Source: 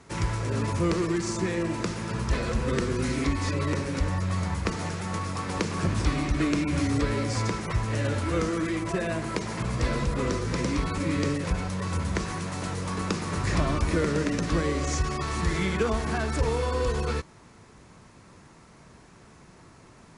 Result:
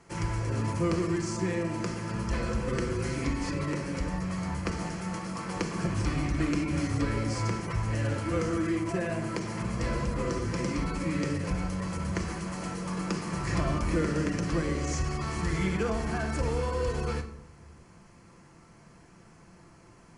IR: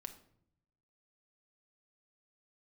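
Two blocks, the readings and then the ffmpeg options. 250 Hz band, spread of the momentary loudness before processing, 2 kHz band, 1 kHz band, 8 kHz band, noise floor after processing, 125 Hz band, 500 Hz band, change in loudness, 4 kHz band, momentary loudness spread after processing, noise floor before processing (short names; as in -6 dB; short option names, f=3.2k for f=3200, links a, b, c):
-2.0 dB, 5 LU, -3.5 dB, -3.5 dB, -4.0 dB, -55 dBFS, -2.5 dB, -3.0 dB, -3.0 dB, -5.5 dB, 5 LU, -52 dBFS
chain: -filter_complex "[0:a]bandreject=f=3.7k:w=5.8[a];[1:a]atrim=start_sample=2205,asetrate=37044,aresample=44100[b];[a][b]afir=irnorm=-1:irlink=0"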